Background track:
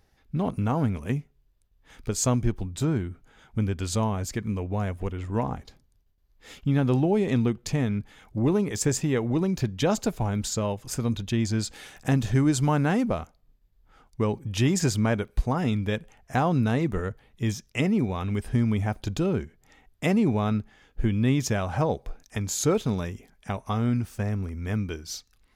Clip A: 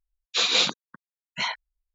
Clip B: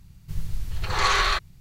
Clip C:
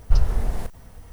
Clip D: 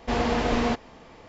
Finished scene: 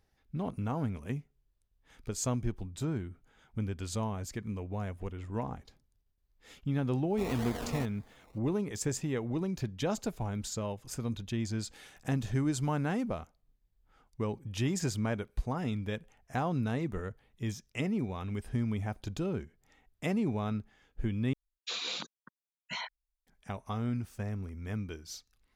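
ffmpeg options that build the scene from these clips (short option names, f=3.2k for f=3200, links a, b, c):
-filter_complex "[0:a]volume=-8.5dB[a];[4:a]acrusher=samples=22:mix=1:aa=0.000001:lfo=1:lforange=13.2:lforate=1.9[b];[1:a]acompressor=threshold=-26dB:ratio=6:attack=3.2:release=140:knee=1:detection=peak[c];[a]asplit=2[d][e];[d]atrim=end=21.334[f];[c]atrim=end=1.94,asetpts=PTS-STARTPTS,volume=-7dB[g];[e]atrim=start=23.266[h];[b]atrim=end=1.28,asetpts=PTS-STARTPTS,volume=-14.5dB,afade=t=in:d=0.004:c=hsin,afade=t=out:st=1.276:d=0.004:c=hsin,adelay=7100[i];[f][g]acrossfade=d=0.004:c1=hsin:c2=hsin[j];[j][h]acrossfade=d=0.004:c1=hsin:c2=hsin[k];[k][i]amix=inputs=2:normalize=0"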